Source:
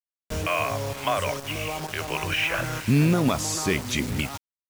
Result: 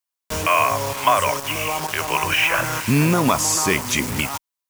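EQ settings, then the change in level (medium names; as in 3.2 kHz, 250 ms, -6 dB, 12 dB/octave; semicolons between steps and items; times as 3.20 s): peaking EQ 1 kHz +7.5 dB 0.42 oct; dynamic bell 3.9 kHz, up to -6 dB, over -44 dBFS, Q 2.4; tilt EQ +1.5 dB/octave; +5.5 dB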